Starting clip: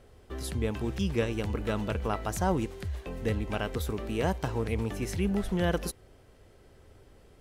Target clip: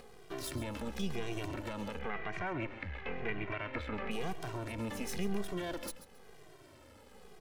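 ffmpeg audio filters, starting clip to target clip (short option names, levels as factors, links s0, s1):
-filter_complex "[0:a]highpass=f=230:p=1,acompressor=threshold=0.0224:ratio=5,alimiter=level_in=1.88:limit=0.0631:level=0:latency=1:release=23,volume=0.531,acompressor=mode=upward:threshold=0.00282:ratio=2.5,aeval=exprs='max(val(0),0)':c=same,asettb=1/sr,asplit=3[s0][s1][s2];[s0]atrim=end=1.994[s3];[s1]atrim=start=1.99:end=4.11,asetpts=PTS-STARTPTS,afade=t=in:d=0.004:c=qsin,afade=t=out:st=2.116:d=0.004:c=qsin,lowpass=f=2200:t=q:w=3.1[s4];[s2]atrim=start=4.106[s5];[s3][s4]acrossfade=d=0.004:c1=hsin:c2=qsin[s6];[s6][s5]acrossfade=d=0.004:c1=qsin:c2=hsin,aecho=1:1:135|270|405:0.2|0.0499|0.0125,asplit=2[s7][s8];[s8]adelay=2,afreqshift=-0.97[s9];[s7][s9]amix=inputs=2:normalize=1,volume=2.24"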